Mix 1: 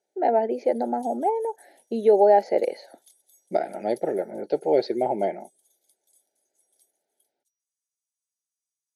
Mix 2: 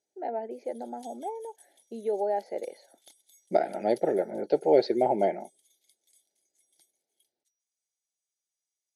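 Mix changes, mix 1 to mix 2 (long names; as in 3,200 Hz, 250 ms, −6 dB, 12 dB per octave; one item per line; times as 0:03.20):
first voice −12.0 dB
background: remove first difference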